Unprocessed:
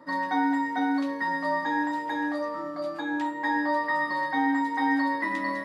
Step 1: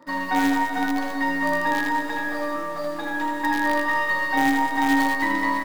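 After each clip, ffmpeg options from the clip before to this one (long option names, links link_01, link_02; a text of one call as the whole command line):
ffmpeg -i in.wav -filter_complex "[0:a]asplit=2[link_01][link_02];[link_02]acrusher=bits=4:dc=4:mix=0:aa=0.000001,volume=-5.5dB[link_03];[link_01][link_03]amix=inputs=2:normalize=0,aecho=1:1:80|200|380|650|1055:0.631|0.398|0.251|0.158|0.1" out.wav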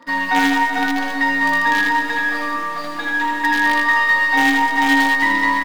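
ffmpeg -i in.wav -filter_complex "[0:a]equalizer=frequency=2900:width=0.57:gain=9.5,aecho=1:1:4.2:0.58,asplit=2[link_01][link_02];[link_02]aeval=exprs='clip(val(0),-1,0.112)':channel_layout=same,volume=-7dB[link_03];[link_01][link_03]amix=inputs=2:normalize=0,volume=-3dB" out.wav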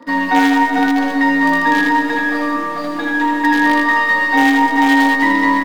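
ffmpeg -i in.wav -filter_complex "[0:a]equalizer=frequency=330:width_type=o:width=2.2:gain=12,acrossover=split=430|2100[link_01][link_02][link_03];[link_01]alimiter=limit=-12dB:level=0:latency=1[link_04];[link_04][link_02][link_03]amix=inputs=3:normalize=0,volume=-1dB" out.wav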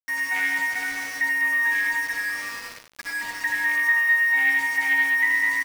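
ffmpeg -i in.wav -af "bandpass=frequency=2100:width_type=q:width=5.8:csg=0,aeval=exprs='val(0)*gte(abs(val(0)),0.0266)':channel_layout=same,aecho=1:1:94:0.355" out.wav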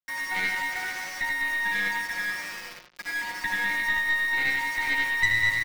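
ffmpeg -i in.wav -filter_complex "[0:a]aecho=1:1:5.6:0.91,acrossover=split=260|790|5500[link_01][link_02][link_03][link_04];[link_04]acrusher=bits=4:dc=4:mix=0:aa=0.000001[link_05];[link_01][link_02][link_03][link_05]amix=inputs=4:normalize=0,aeval=exprs='(tanh(5.62*val(0)+0.6)-tanh(0.6))/5.62':channel_layout=same" out.wav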